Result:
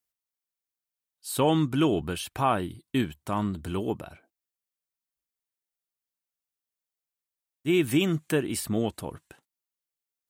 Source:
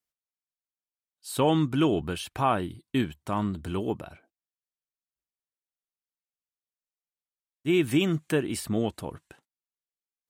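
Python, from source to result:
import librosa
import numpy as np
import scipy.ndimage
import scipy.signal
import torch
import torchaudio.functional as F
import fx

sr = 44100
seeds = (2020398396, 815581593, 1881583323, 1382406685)

y = fx.high_shelf(x, sr, hz=9300.0, db=7.0)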